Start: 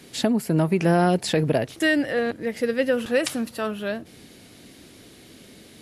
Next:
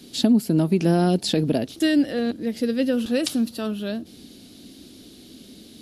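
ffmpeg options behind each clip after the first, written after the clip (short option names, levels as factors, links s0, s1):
-af "equalizer=f=125:t=o:w=1:g=-7,equalizer=f=250:t=o:w=1:g=6,equalizer=f=500:t=o:w=1:g=-5,equalizer=f=1000:t=o:w=1:g=-7,equalizer=f=2000:t=o:w=1:g=-11,equalizer=f=4000:t=o:w=1:g=5,equalizer=f=8000:t=o:w=1:g=-4,volume=1.33"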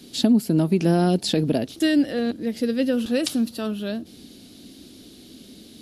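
-af anull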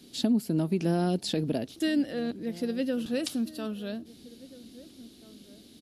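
-filter_complex "[0:a]asplit=2[s0][s1];[s1]adelay=1633,volume=0.112,highshelf=f=4000:g=-36.7[s2];[s0][s2]amix=inputs=2:normalize=0,volume=0.422"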